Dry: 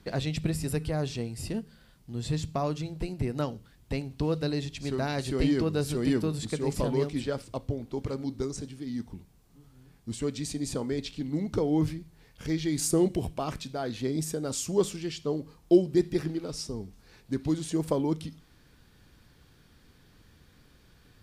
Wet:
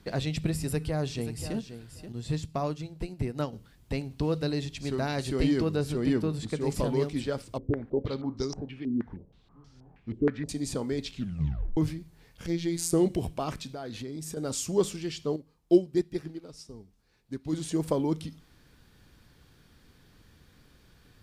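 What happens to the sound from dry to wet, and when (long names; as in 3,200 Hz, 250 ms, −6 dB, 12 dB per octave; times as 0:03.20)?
0:00.63–0:01.55: delay throw 530 ms, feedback 15%, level −10.5 dB
0:02.12–0:03.53: expander for the loud parts, over −40 dBFS
0:05.76–0:06.61: high-shelf EQ 4,600 Hz −8 dB
0:07.58–0:10.49: low-pass on a step sequencer 6.3 Hz 360–5,400 Hz
0:11.10: tape stop 0.67 s
0:12.46–0:12.92: phases set to zero 169 Hz
0:13.54–0:14.37: downward compressor, threshold −34 dBFS
0:15.36–0:17.53: expander for the loud parts, over −41 dBFS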